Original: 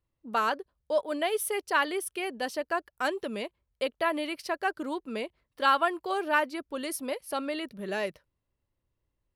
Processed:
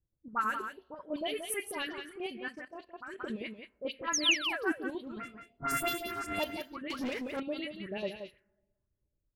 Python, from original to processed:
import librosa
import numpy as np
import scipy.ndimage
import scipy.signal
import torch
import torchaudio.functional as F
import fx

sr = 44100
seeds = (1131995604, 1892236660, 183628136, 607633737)

p1 = fx.sample_sort(x, sr, block=64, at=(5.18, 6.39))
p2 = fx.chopper(p1, sr, hz=9.1, depth_pct=60, duty_pct=55)
p3 = np.clip(10.0 ** (23.5 / 20.0) * p2, -1.0, 1.0) / 10.0 ** (23.5 / 20.0)
p4 = p2 + (p3 * 10.0 ** (-7.0 / 20.0))
p5 = fx.rev_double_slope(p4, sr, seeds[0], early_s=0.48, late_s=1.8, knee_db=-19, drr_db=14.0)
p6 = fx.spec_paint(p5, sr, seeds[1], shape='fall', start_s=4.08, length_s=0.64, low_hz=290.0, high_hz=6900.0, level_db=-20.0)
p7 = fx.phaser_stages(p6, sr, stages=4, low_hz=560.0, high_hz=1600.0, hz=1.9, feedback_pct=35)
p8 = fx.env_lowpass(p7, sr, base_hz=820.0, full_db=-26.0)
p9 = fx.dispersion(p8, sr, late='highs', ms=56.0, hz=1900.0)
p10 = p9 + fx.echo_single(p9, sr, ms=177, db=-8.0, dry=0)
p11 = fx.level_steps(p10, sr, step_db=13, at=(2.52, 3.2))
p12 = fx.leveller(p11, sr, passes=3, at=(6.9, 7.4))
y = p12 * 10.0 ** (-4.5 / 20.0)